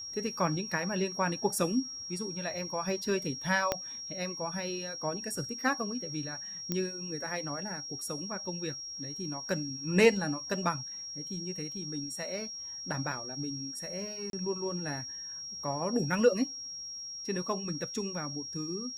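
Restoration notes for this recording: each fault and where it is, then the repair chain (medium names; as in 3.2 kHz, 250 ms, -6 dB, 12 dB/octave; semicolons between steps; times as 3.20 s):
whine 5.6 kHz -39 dBFS
3.72 s: pop -13 dBFS
6.72 s: pop -17 dBFS
14.30–14.33 s: dropout 32 ms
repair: de-click; band-stop 5.6 kHz, Q 30; interpolate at 14.30 s, 32 ms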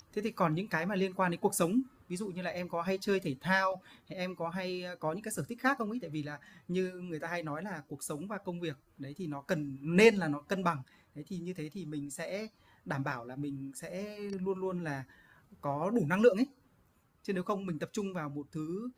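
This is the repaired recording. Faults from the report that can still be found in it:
3.72 s: pop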